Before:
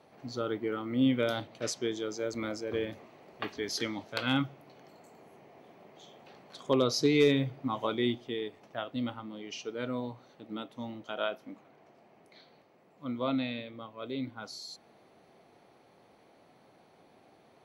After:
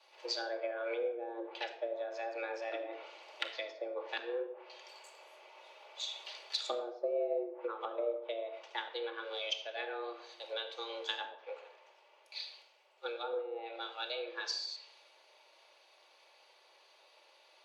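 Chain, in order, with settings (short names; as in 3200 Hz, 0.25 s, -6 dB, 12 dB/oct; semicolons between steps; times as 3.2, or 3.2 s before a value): weighting filter D; treble ducked by the level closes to 360 Hz, closed at -25.5 dBFS; dynamic EQ 490 Hz, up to -6 dB, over -45 dBFS, Q 1; compressor 5:1, threshold -41 dBFS, peak gain reduction 13 dB; frequency shift +230 Hz; shoebox room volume 3600 m³, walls furnished, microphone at 2.4 m; three-band expander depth 70%; gain +3.5 dB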